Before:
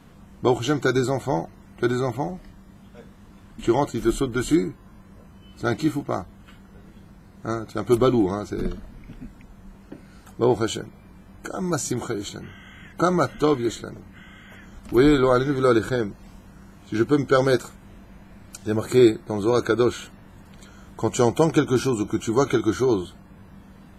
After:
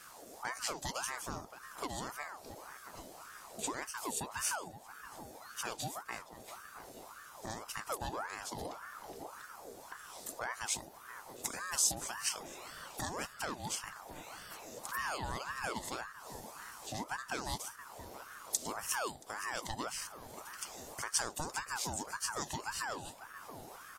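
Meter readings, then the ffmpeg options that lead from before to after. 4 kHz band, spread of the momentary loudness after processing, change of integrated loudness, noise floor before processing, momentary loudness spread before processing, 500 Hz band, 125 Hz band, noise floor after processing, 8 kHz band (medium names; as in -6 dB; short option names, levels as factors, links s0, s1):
-7.0 dB, 13 LU, -17.0 dB, -49 dBFS, 16 LU, -24.5 dB, -22.5 dB, -54 dBFS, 0.0 dB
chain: -filter_complex "[0:a]acompressor=threshold=0.0126:ratio=2.5,aexciter=amount=6.7:drive=4.6:freq=3600,asplit=2[s0][s1];[s1]adelay=676,lowpass=f=1400:p=1,volume=0.251,asplit=2[s2][s3];[s3]adelay=676,lowpass=f=1400:p=1,volume=0.51,asplit=2[s4][s5];[s5]adelay=676,lowpass=f=1400:p=1,volume=0.51,asplit=2[s6][s7];[s7]adelay=676,lowpass=f=1400:p=1,volume=0.51,asplit=2[s8][s9];[s9]adelay=676,lowpass=f=1400:p=1,volume=0.51[s10];[s2][s4][s6][s8][s10]amix=inputs=5:normalize=0[s11];[s0][s11]amix=inputs=2:normalize=0,aeval=exprs='val(0)*sin(2*PI*950*n/s+950*0.55/1.8*sin(2*PI*1.8*n/s))':c=same,volume=0.631"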